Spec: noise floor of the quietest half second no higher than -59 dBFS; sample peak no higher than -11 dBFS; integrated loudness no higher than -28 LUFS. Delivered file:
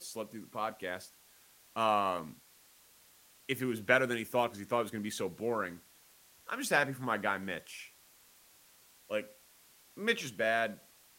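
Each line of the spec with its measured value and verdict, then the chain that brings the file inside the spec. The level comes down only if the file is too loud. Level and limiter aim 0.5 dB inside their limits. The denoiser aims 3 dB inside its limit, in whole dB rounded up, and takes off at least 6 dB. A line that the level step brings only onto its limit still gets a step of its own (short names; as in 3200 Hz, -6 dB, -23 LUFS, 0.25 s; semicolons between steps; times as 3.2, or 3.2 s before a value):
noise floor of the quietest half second -62 dBFS: OK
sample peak -10.0 dBFS: fail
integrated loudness -34.0 LUFS: OK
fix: limiter -11.5 dBFS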